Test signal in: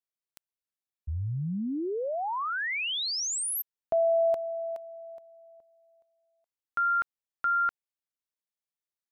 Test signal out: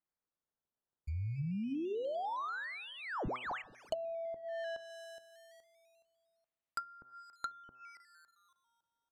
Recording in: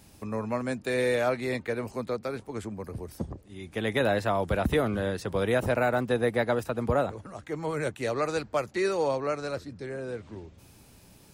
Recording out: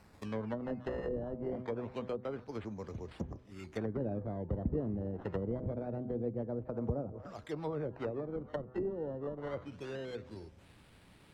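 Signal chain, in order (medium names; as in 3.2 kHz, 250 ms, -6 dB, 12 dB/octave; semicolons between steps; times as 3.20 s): thinning echo 279 ms, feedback 38%, high-pass 250 Hz, level -23 dB; decimation with a swept rate 13×, swing 100% 0.25 Hz; de-hum 125.8 Hz, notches 14; low-pass that closes with the level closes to 370 Hz, closed at -24.5 dBFS; trim -5.5 dB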